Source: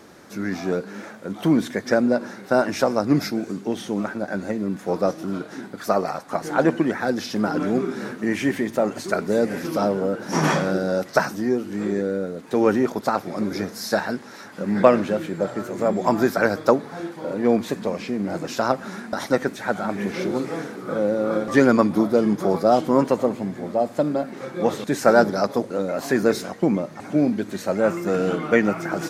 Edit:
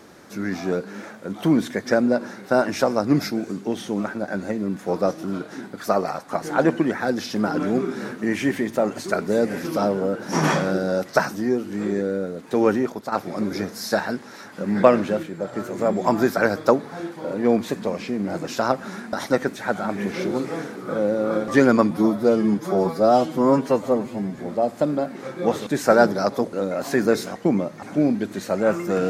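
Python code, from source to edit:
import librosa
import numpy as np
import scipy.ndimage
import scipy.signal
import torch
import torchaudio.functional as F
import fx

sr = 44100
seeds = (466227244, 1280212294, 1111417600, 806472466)

y = fx.edit(x, sr, fx.fade_out_to(start_s=12.66, length_s=0.46, floor_db=-9.5),
    fx.clip_gain(start_s=15.23, length_s=0.3, db=-4.5),
    fx.stretch_span(start_s=21.91, length_s=1.65, factor=1.5), tone=tone)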